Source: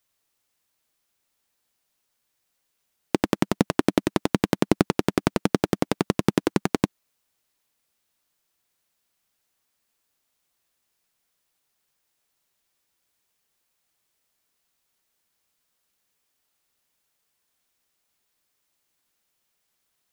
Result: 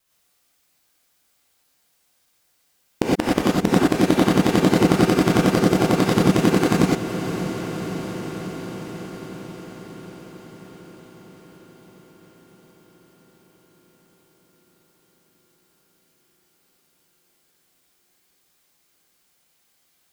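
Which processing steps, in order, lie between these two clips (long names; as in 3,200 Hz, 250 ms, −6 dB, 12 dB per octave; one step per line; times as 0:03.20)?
reversed piece by piece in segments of 137 ms
feedback delay with all-pass diffusion 595 ms, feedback 68%, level −12.5 dB
reverb whose tail is shaped and stops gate 140 ms rising, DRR −5 dB
in parallel at −2 dB: downward compressor, threshold −28 dBFS, peak gain reduction 16.5 dB
on the sum: level −1.5 dB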